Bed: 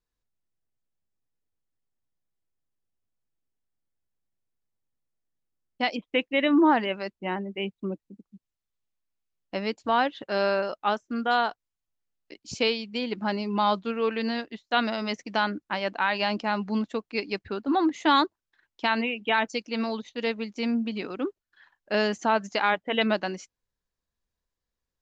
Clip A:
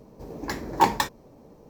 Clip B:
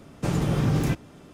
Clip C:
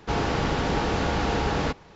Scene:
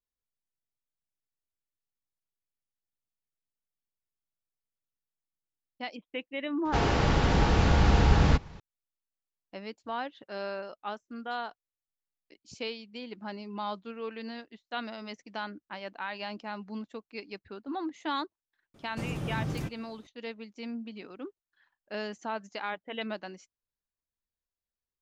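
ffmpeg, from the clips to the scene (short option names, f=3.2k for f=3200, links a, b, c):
-filter_complex "[0:a]volume=-11.5dB[a];[3:a]asubboost=boost=6:cutoff=190,atrim=end=1.95,asetpts=PTS-STARTPTS,volume=-1dB,afade=t=in:d=0.004:c=hsin,afade=t=out:st=1.946:d=0.004:c=hsin,adelay=6650[b];[2:a]atrim=end=1.33,asetpts=PTS-STARTPTS,volume=-10.5dB,afade=t=in:d=0.004:c=hsin,afade=t=out:st=1.326:d=0.004:c=hsin,adelay=18740[c];[a][b][c]amix=inputs=3:normalize=0"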